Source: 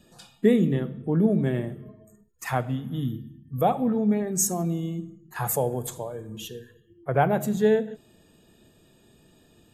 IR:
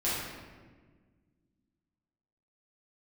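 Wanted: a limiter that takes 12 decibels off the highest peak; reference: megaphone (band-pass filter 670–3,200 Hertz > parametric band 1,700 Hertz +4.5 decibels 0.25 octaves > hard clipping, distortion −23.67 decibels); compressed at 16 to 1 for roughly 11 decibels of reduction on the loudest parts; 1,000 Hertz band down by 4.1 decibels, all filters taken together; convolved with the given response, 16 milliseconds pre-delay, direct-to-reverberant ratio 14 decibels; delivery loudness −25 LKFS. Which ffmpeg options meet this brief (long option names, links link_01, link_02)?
-filter_complex "[0:a]equalizer=frequency=1000:width_type=o:gain=-3.5,acompressor=threshold=-26dB:ratio=16,alimiter=level_in=5dB:limit=-24dB:level=0:latency=1,volume=-5dB,asplit=2[link_01][link_02];[1:a]atrim=start_sample=2205,adelay=16[link_03];[link_02][link_03]afir=irnorm=-1:irlink=0,volume=-23dB[link_04];[link_01][link_04]amix=inputs=2:normalize=0,highpass=670,lowpass=3200,equalizer=frequency=1700:width_type=o:width=0.25:gain=4.5,asoftclip=type=hard:threshold=-32.5dB,volume=22dB"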